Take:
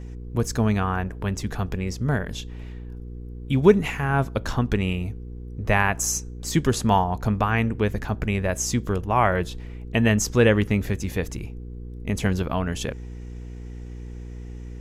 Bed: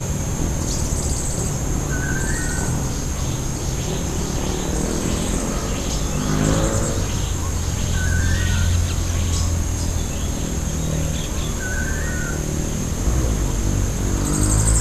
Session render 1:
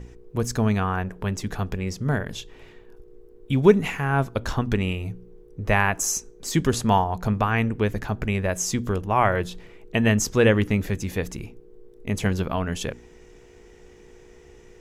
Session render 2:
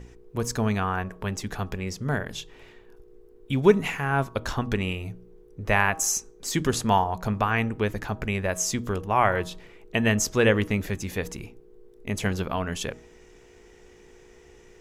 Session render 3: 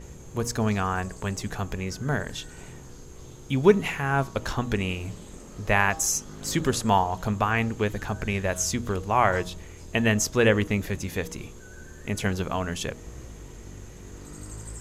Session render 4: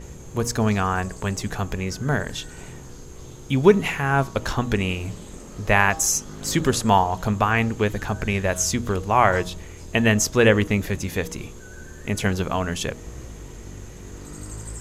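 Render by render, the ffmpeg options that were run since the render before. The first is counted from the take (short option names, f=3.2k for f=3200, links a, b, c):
-af "bandreject=f=60:t=h:w=4,bandreject=f=120:t=h:w=4,bandreject=f=180:t=h:w=4,bandreject=f=240:t=h:w=4,bandreject=f=300:t=h:w=4"
-af "lowshelf=f=390:g=-4.5,bandreject=f=159.1:t=h:w=4,bandreject=f=318.2:t=h:w=4,bandreject=f=477.3:t=h:w=4,bandreject=f=636.4:t=h:w=4,bandreject=f=795.5:t=h:w=4,bandreject=f=954.6:t=h:w=4,bandreject=f=1.1137k:t=h:w=4,bandreject=f=1.2728k:t=h:w=4"
-filter_complex "[1:a]volume=-22.5dB[a];[0:a][a]amix=inputs=2:normalize=0"
-af "volume=4dB,alimiter=limit=-2dB:level=0:latency=1"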